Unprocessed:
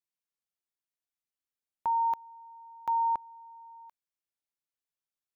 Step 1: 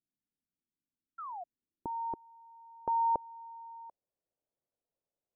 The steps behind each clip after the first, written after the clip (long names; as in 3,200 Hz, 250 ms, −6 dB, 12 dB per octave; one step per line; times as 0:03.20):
low-pass filter sweep 260 Hz → 580 Hz, 0:01.27–0:03.43
sound drawn into the spectrogram fall, 0:01.18–0:01.44, 670–1,400 Hz −48 dBFS
level +6.5 dB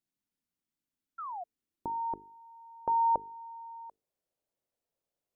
mains-hum notches 50/100/150/200/250/300/350/400/450 Hz
level +2.5 dB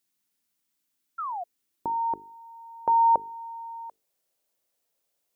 spectral tilt +2 dB per octave
level +7 dB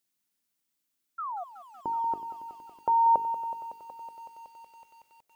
feedback echo at a low word length 186 ms, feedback 80%, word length 9 bits, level −13 dB
level −2.5 dB